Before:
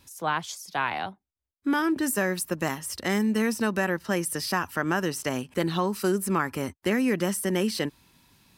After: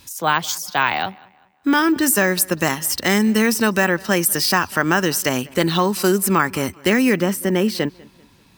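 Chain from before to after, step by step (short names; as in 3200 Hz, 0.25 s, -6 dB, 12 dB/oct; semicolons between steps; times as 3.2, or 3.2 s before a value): high shelf 2400 Hz +7 dB, from 7.2 s -3.5 dB; darkening echo 0.196 s, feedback 38%, low-pass 4200 Hz, level -24 dB; careless resampling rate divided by 2×, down filtered, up hold; gain +7.5 dB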